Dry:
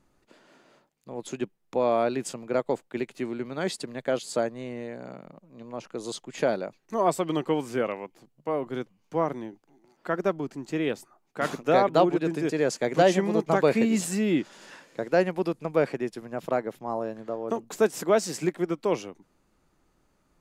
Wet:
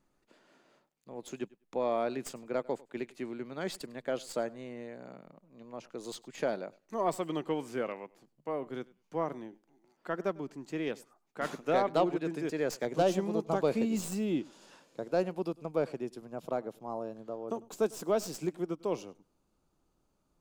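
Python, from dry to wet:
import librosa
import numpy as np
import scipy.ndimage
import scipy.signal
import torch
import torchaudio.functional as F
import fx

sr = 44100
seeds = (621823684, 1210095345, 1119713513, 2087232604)

y = fx.tracing_dist(x, sr, depth_ms=0.044)
y = fx.peak_eq(y, sr, hz=fx.steps((0.0, 81.0), (12.85, 1900.0)), db=-10.0, octaves=0.65)
y = fx.echo_feedback(y, sr, ms=100, feedback_pct=15, wet_db=-23.0)
y = y * 10.0 ** (-7.0 / 20.0)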